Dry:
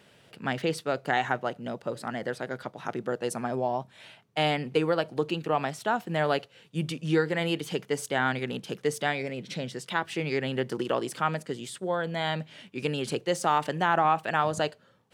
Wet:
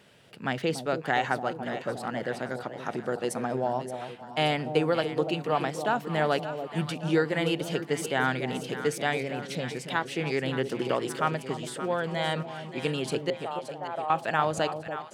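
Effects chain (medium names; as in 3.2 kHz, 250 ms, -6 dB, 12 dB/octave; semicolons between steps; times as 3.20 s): 13.30–14.10 s: ladder band-pass 640 Hz, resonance 50%; echo whose repeats swap between lows and highs 287 ms, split 850 Hz, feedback 71%, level -8 dB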